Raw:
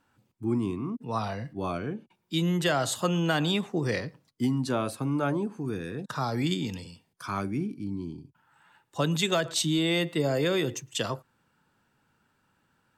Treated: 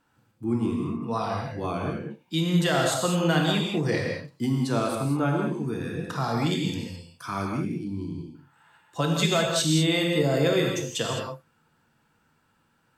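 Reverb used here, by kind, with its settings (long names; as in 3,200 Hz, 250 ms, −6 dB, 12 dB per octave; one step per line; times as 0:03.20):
reverb whose tail is shaped and stops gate 230 ms flat, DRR 0 dB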